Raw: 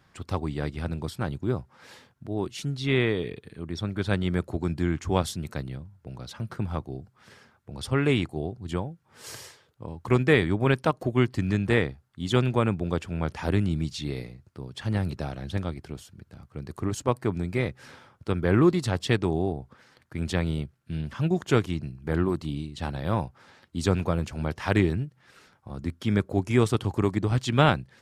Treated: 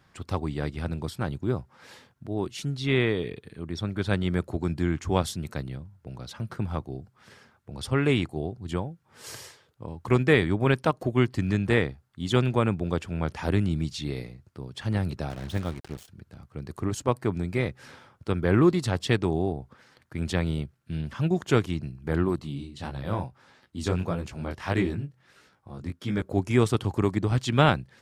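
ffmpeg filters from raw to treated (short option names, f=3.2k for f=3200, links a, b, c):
-filter_complex "[0:a]asettb=1/sr,asplit=3[a][b][c];[a]atrim=end=15.304[d];[b]atrim=start=15.3:end=16.08,asetpts=PTS-STARTPTS,afade=t=in:d=0.004:c=qsin,afade=t=out:st=0.776:d=0.004:c=qsin,acrusher=bits=6:mix=0:aa=0.5[e];[c]atrim=start=16.076[f];[d][e]acrossfade=d=0.004:c1=hsin:c2=qsin[g];[g][f]acrossfade=d=0.004:c1=qsin:c2=hsin,asettb=1/sr,asplit=3[h][i][j];[h]atrim=end=22.364[k];[i]atrim=start=22.36:end=26.22,asetpts=PTS-STARTPTS,afade=t=in:d=0.004:c=qsin,afade=t=out:st=3.856:d=0.004:c=qsin,flanger=delay=15.5:depth=7.9:speed=1.6[l];[j]atrim=start=26.216[m];[k][l]acrossfade=d=0.004:c1=hsin:c2=qsin[n];[n][m]acrossfade=d=0.004:c1=qsin:c2=hsin"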